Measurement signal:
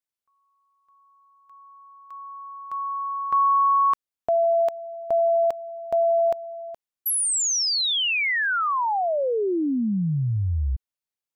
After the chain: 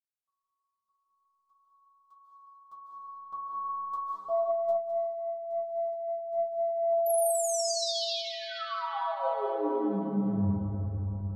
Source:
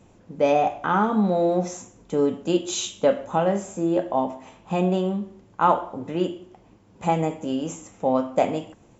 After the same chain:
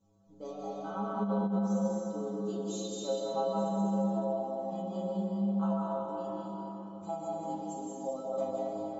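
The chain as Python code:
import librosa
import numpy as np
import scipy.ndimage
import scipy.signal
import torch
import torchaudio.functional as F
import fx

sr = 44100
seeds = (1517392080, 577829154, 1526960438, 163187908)

p1 = fx.band_shelf(x, sr, hz=2100.0, db=-15.5, octaves=1.0)
p2 = fx.stiff_resonator(p1, sr, f0_hz=98.0, decay_s=0.75, stiffness=0.008)
p3 = fx.rev_freeverb(p2, sr, rt60_s=4.5, hf_ratio=0.55, predelay_ms=110, drr_db=-4.5)
p4 = fx.over_compress(p3, sr, threshold_db=-26.0, ratio=-0.5)
p5 = p4 + fx.echo_single(p4, sr, ms=207, db=-10.0, dry=0)
y = p5 * librosa.db_to_amplitude(-3.0)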